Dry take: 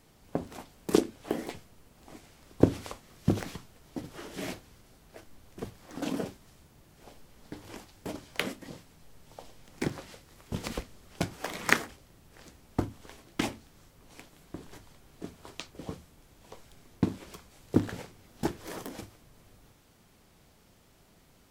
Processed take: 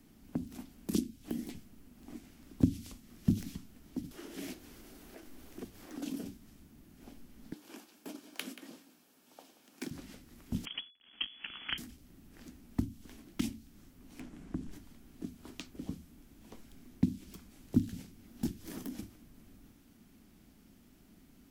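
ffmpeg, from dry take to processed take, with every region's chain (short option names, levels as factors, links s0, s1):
-filter_complex "[0:a]asettb=1/sr,asplit=3[s0][s1][s2];[s0]atrim=end=4.114[s3];[s1]atrim=start=4.11:end=6.25,asetpts=PTS-STARTPTS,afade=t=in:d=0.004:c=qsin,afade=t=out:st=2.136:d=0.004:c=qsin,lowshelf=f=290:t=q:w=1.5:g=-7,bandreject=f=50:t=h:w=6,bandreject=f=100:t=h:w=6,bandreject=f=150:t=h:w=6,acompressor=mode=upward:threshold=0.00891:ratio=2.5:attack=3.2:release=140:knee=2.83:detection=peak[s4];[s2]atrim=start=6.246[s5];[s3][s4]acrossfade=d=0.004:c1=hsin:c2=qsin[s6];[s6][s5]acrossfade=d=0.004:c1=qsin:c2=hsin,asettb=1/sr,asplit=3[s7][s8][s9];[s7]atrim=end=7.534[s10];[s8]atrim=start=7.53:end=9.91,asetpts=PTS-STARTPTS,afade=t=in:d=0.004:c=qsin,afade=t=out:st=2.376:d=0.004:c=qsin,highpass=430,bandreject=f=2000:w=9.3,aecho=1:1:181:0.168,atrim=end_sample=104958[s11];[s9]atrim=start=9.906[s12];[s10][s11]acrossfade=d=0.004:c1=hsin:c2=qsin[s13];[s13][s12]acrossfade=d=0.004:c1=qsin:c2=hsin,asettb=1/sr,asplit=3[s14][s15][s16];[s14]atrim=end=10.654[s17];[s15]atrim=start=10.65:end=11.78,asetpts=PTS-STARTPTS,afade=t=in:d=0.004:c=qsin,afade=t=out:st=1.126:d=0.004:c=qsin,equalizer=f=350:t=o:w=1.2:g=3.5,acrusher=bits=6:dc=4:mix=0:aa=0.000001,lowpass=f=2900:t=q:w=0.5098,lowpass=f=2900:t=q:w=0.6013,lowpass=f=2900:t=q:w=0.9,lowpass=f=2900:t=q:w=2.563,afreqshift=-3400[s18];[s16]atrim=start=11.776[s19];[s17][s18]acrossfade=d=0.004:c1=hsin:c2=qsin[s20];[s20][s19]acrossfade=d=0.004:c1=qsin:c2=hsin,asettb=1/sr,asplit=3[s21][s22][s23];[s21]atrim=end=14.204[s24];[s22]atrim=start=14.2:end=14.72,asetpts=PTS-STARTPTS,afade=t=in:d=0.004:c=qsin,afade=t=out:st=0.516:d=0.004:c=qsin,lowpass=6600,equalizer=f=4100:w=0.97:g=-8.5,acontrast=76[s25];[s23]atrim=start=14.716[s26];[s24][s25]acrossfade=d=0.004:c1=hsin:c2=qsin[s27];[s27][s26]acrossfade=d=0.004:c1=qsin:c2=hsin,equalizer=f=125:t=o:w=1:g=-7,equalizer=f=250:t=o:w=1:g=11,equalizer=f=500:t=o:w=1:g=-10,equalizer=f=1000:t=o:w=1:g=-7,equalizer=f=2000:t=o:w=1:g=-3,equalizer=f=4000:t=o:w=1:g=-5,equalizer=f=8000:t=o:w=1:g=-5,acrossover=split=210|3000[s28][s29][s30];[s29]acompressor=threshold=0.00562:ratio=5[s31];[s28][s31][s30]amix=inputs=3:normalize=0,volume=1.12"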